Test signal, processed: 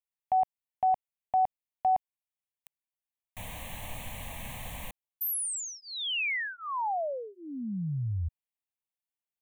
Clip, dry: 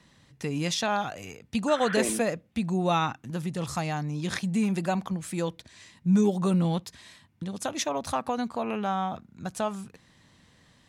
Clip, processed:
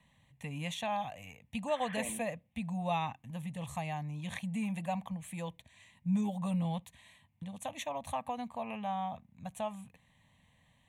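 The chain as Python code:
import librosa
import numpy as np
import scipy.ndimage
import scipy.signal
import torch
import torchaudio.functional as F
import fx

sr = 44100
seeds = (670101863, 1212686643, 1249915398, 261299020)

y = fx.fixed_phaser(x, sr, hz=1400.0, stages=6)
y = y * 10.0 ** (-5.5 / 20.0)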